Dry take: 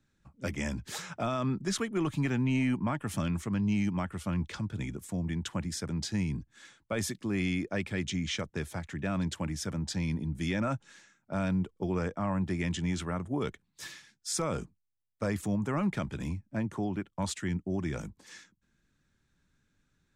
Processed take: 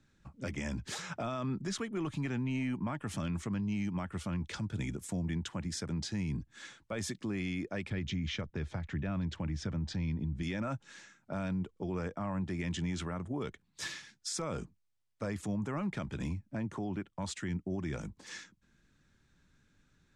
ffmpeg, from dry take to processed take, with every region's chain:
ffmpeg -i in.wav -filter_complex "[0:a]asettb=1/sr,asplit=3[link_01][link_02][link_03];[link_01]atrim=end=4.444[link_04];[link_02]atrim=start=4.44:end=5.28,asetpts=PTS-STARTPTS,afade=type=in:duration=0.004:curve=qsin,afade=type=out:start_time=0.836:duration=0.004:curve=qsin,highshelf=frequency=7700:gain=8,bandreject=frequency=1100:width=15[link_05];[link_03]atrim=start=5.276[link_06];[link_04][link_05]acrossfade=duration=0.004:curve1=hsin:curve2=qsin[link_07];[link_07][link_06]acrossfade=duration=0.004:curve1=qsin:curve2=hsin,asettb=1/sr,asplit=3[link_08][link_09][link_10];[link_08]atrim=end=7.904[link_11];[link_09]atrim=start=7.9:end=10.43,asetpts=PTS-STARTPTS,afade=type=in:duration=0.004:curve=qsin,afade=type=out:start_time=2.526:duration=0.004:curve=qsin,lowpass=4500,lowshelf=frequency=120:gain=11.5[link_12];[link_10]atrim=start=10.426[link_13];[link_11][link_12]acrossfade=duration=0.004:curve1=hsin:curve2=qsin[link_14];[link_14][link_13]acrossfade=duration=0.004:curve1=qsin:curve2=hsin,lowpass=8400,alimiter=level_in=8.5dB:limit=-24dB:level=0:latency=1:release=312,volume=-8.5dB,volume=4.5dB" out.wav

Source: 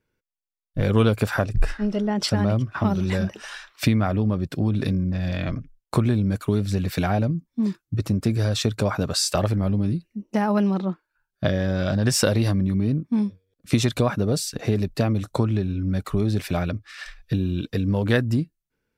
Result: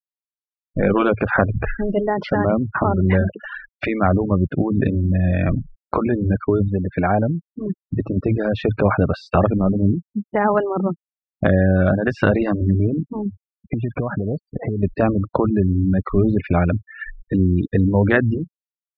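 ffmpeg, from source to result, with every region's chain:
ffmpeg -i in.wav -filter_complex "[0:a]asettb=1/sr,asplit=3[link_01][link_02][link_03];[link_01]atrim=end=6.684[link_04];[link_02]atrim=start=6.68:end=7.49,asetpts=PTS-STARTPTS,afade=type=in:duration=0.004:curve=qsin,afade=type=out:start_time=0.806:duration=0.004:curve=qsin,lowpass=frequency=2300:poles=1,lowshelf=frequency=200:gain=-9.5[link_05];[link_03]atrim=start=7.486[link_06];[link_04][link_05]acrossfade=duration=0.004:curve1=hsin:curve2=qsin[link_07];[link_07][link_06]acrossfade=duration=0.004:curve1=qsin:curve2=hsin,asettb=1/sr,asplit=3[link_08][link_09][link_10];[link_08]atrim=end=13.264[link_11];[link_09]atrim=start=13.26:end=14.83,asetpts=PTS-STARTPTS,afade=type=in:duration=0.004:curve=qsin,afade=type=out:start_time=1.566:duration=0.004:curve=qsin,lowpass=2100,acompressor=threshold=-25dB:ratio=16:attack=3.2:release=140:knee=1:detection=peak[link_12];[link_10]atrim=start=14.826[link_13];[link_11][link_12]acrossfade=duration=0.004:curve1=hsin:curve2=qsin[link_14];[link_14][link_13]acrossfade=duration=0.004:curve1=qsin:curve2=hsin,afftfilt=real='re*gte(hypot(re,im),0.0282)':imag='im*gte(hypot(re,im),0.0282)':win_size=1024:overlap=0.75,lowpass=frequency=2300:width=0.5412,lowpass=frequency=2300:width=1.3066,afftfilt=real='re*lt(hypot(re,im),0.708)':imag='im*lt(hypot(re,im),0.708)':win_size=1024:overlap=0.75,volume=8dB" out.wav

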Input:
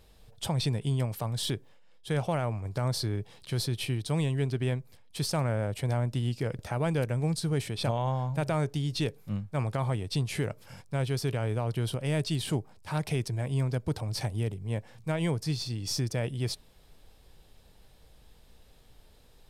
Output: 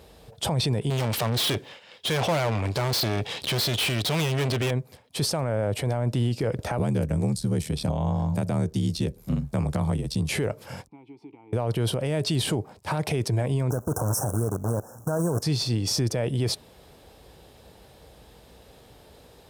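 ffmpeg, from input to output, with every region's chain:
ffmpeg -i in.wav -filter_complex "[0:a]asettb=1/sr,asplit=3[link_01][link_02][link_03];[link_01]atrim=end=0.904[link_04];[link_02]atrim=start=0.9:end=4.71,asetpts=PTS-STARTPTS,afade=type=in:duration=0.004:curve=qsin,afade=type=out:start_time=3.806:duration=0.004:curve=qsin,equalizer=frequency=3100:width_type=o:width=2.3:gain=14,acontrast=27,aeval=exprs='(tanh(39.8*val(0)+0.4)-tanh(0.4))/39.8':channel_layout=same[link_05];[link_03]atrim=start=4.706[link_06];[link_04][link_05]acrossfade=duration=0.004:curve1=hsin:curve2=qsin[link_07];[link_07][link_06]acrossfade=duration=0.004:curve1=qsin:curve2=hsin,asettb=1/sr,asplit=3[link_08][link_09][link_10];[link_08]atrim=end=6.784[link_11];[link_09]atrim=start=6.78:end=10.29,asetpts=PTS-STARTPTS,afade=type=in:duration=0.004:curve=qsin,afade=type=out:start_time=3.506:duration=0.004:curve=qsin,aeval=exprs='val(0)*sin(2*PI*39*n/s)':channel_layout=same,bass=frequency=250:gain=6,treble=frequency=4000:gain=10,acrossover=split=100|230[link_12][link_13][link_14];[link_12]acompressor=threshold=-44dB:ratio=4[link_15];[link_13]acompressor=threshold=-35dB:ratio=4[link_16];[link_14]acompressor=threshold=-43dB:ratio=4[link_17];[link_15][link_16][link_17]amix=inputs=3:normalize=0[link_18];[link_10]atrim=start=10.286[link_19];[link_11][link_18]acrossfade=duration=0.004:curve1=hsin:curve2=qsin[link_20];[link_20][link_19]acrossfade=duration=0.004:curve1=qsin:curve2=hsin,asettb=1/sr,asplit=3[link_21][link_22][link_23];[link_21]atrim=end=10.874[link_24];[link_22]atrim=start=10.87:end=11.53,asetpts=PTS-STARTPTS,afade=type=in:duration=0.004:curve=qsin,afade=type=out:start_time=0.656:duration=0.004:curve=qsin,equalizer=frequency=680:width_type=o:width=2:gain=4,acompressor=threshold=-41dB:ratio=8:attack=3.2:release=140:knee=1:detection=peak,asplit=3[link_25][link_26][link_27];[link_25]bandpass=frequency=300:width_type=q:width=8,volume=0dB[link_28];[link_26]bandpass=frequency=870:width_type=q:width=8,volume=-6dB[link_29];[link_27]bandpass=frequency=2240:width_type=q:width=8,volume=-9dB[link_30];[link_28][link_29][link_30]amix=inputs=3:normalize=0[link_31];[link_23]atrim=start=11.526[link_32];[link_24][link_31]acrossfade=duration=0.004:curve1=hsin:curve2=qsin[link_33];[link_33][link_32]acrossfade=duration=0.004:curve1=qsin:curve2=hsin,asettb=1/sr,asplit=3[link_34][link_35][link_36];[link_34]atrim=end=13.704[link_37];[link_35]atrim=start=13.7:end=15.42,asetpts=PTS-STARTPTS,afade=type=in:duration=0.004:curve=qsin,afade=type=out:start_time=1.716:duration=0.004:curve=qsin,aemphasis=mode=production:type=50fm,acrusher=bits=7:dc=4:mix=0:aa=0.000001,asuperstop=centerf=3000:order=20:qfactor=0.75[link_38];[link_36]atrim=start=15.416[link_39];[link_37][link_38]acrossfade=duration=0.004:curve1=hsin:curve2=qsin[link_40];[link_40][link_39]acrossfade=duration=0.004:curve1=qsin:curve2=hsin,highpass=frequency=51:width=0.5412,highpass=frequency=51:width=1.3066,equalizer=frequency=520:width=0.55:gain=6.5,alimiter=limit=-24dB:level=0:latency=1:release=29,volume=7.5dB" out.wav

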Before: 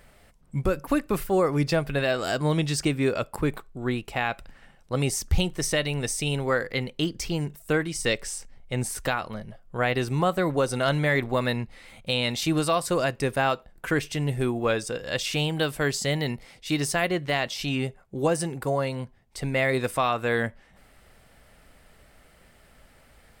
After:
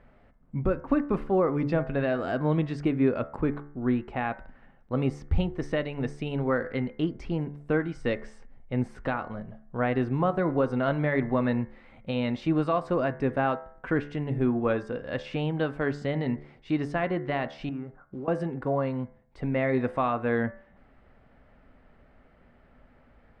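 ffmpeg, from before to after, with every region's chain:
ffmpeg -i in.wav -filter_complex "[0:a]asettb=1/sr,asplit=3[link_01][link_02][link_03];[link_01]atrim=end=17.694[link_04];[link_02]atrim=start=17.69:end=18.28,asetpts=PTS-STARTPTS,afade=type=in:duration=0.004:curve=qsin,afade=type=out:start_time=0.586:duration=0.004:curve=qsin,lowpass=frequency=1400:width_type=q:width=3.8,acrusher=bits=6:mode=log:mix=0:aa=0.000001,acompressor=threshold=-34dB:ratio=8:attack=3.2:release=140:knee=1:detection=peak[link_05];[link_03]atrim=start=18.276[link_06];[link_04][link_05]acrossfade=duration=0.004:curve1=hsin:curve2=qsin[link_07];[link_07][link_06]acrossfade=duration=0.004:curve1=qsin:curve2=hsin,lowpass=1600,equalizer=frequency=250:width=3.8:gain=6.5,bandreject=frequency=72.52:width_type=h:width=4,bandreject=frequency=145.04:width_type=h:width=4,bandreject=frequency=217.56:width_type=h:width=4,bandreject=frequency=290.08:width_type=h:width=4,bandreject=frequency=362.6:width_type=h:width=4,bandreject=frequency=435.12:width_type=h:width=4,bandreject=frequency=507.64:width_type=h:width=4,bandreject=frequency=580.16:width_type=h:width=4,bandreject=frequency=652.68:width_type=h:width=4,bandreject=frequency=725.2:width_type=h:width=4,bandreject=frequency=797.72:width_type=h:width=4,bandreject=frequency=870.24:width_type=h:width=4,bandreject=frequency=942.76:width_type=h:width=4,bandreject=frequency=1015.28:width_type=h:width=4,bandreject=frequency=1087.8:width_type=h:width=4,bandreject=frequency=1160.32:width_type=h:width=4,bandreject=frequency=1232.84:width_type=h:width=4,bandreject=frequency=1305.36:width_type=h:width=4,bandreject=frequency=1377.88:width_type=h:width=4,bandreject=frequency=1450.4:width_type=h:width=4,bandreject=frequency=1522.92:width_type=h:width=4,bandreject=frequency=1595.44:width_type=h:width=4,bandreject=frequency=1667.96:width_type=h:width=4,bandreject=frequency=1740.48:width_type=h:width=4,bandreject=frequency=1813:width_type=h:width=4,bandreject=frequency=1885.52:width_type=h:width=4,bandreject=frequency=1958.04:width_type=h:width=4,bandreject=frequency=2030.56:width_type=h:width=4,bandreject=frequency=2103.08:width_type=h:width=4,bandreject=frequency=2175.6:width_type=h:width=4,volume=-1.5dB" out.wav

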